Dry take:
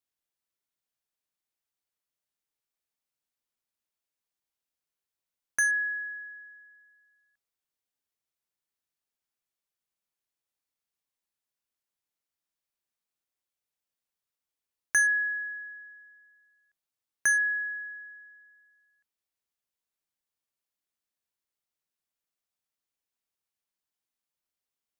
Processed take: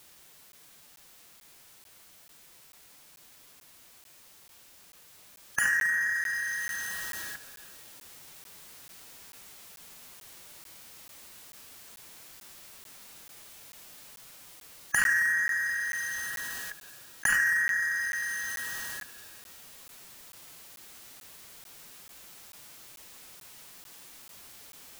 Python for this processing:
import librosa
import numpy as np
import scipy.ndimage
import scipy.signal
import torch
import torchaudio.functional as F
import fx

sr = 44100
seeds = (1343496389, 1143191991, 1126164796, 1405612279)

p1 = np.clip(x, -10.0 ** (-29.0 / 20.0), 10.0 ** (-29.0 / 20.0))
p2 = x + (p1 * librosa.db_to_amplitude(-7.0))
p3 = fx.peak_eq(p2, sr, hz=130.0, db=2.5, octaves=0.77)
p4 = fx.rev_schroeder(p3, sr, rt60_s=1.7, comb_ms=30, drr_db=17.5)
p5 = fx.rider(p4, sr, range_db=10, speed_s=2.0)
p6 = p5 + fx.echo_feedback(p5, sr, ms=73, feedback_pct=48, wet_db=-21, dry=0)
p7 = fx.pitch_keep_formants(p6, sr, semitones=2.0)
p8 = fx.buffer_crackle(p7, sr, first_s=0.52, period_s=0.44, block=512, kind='zero')
p9 = fx.env_flatten(p8, sr, amount_pct=70)
y = p9 * librosa.db_to_amplitude(-6.0)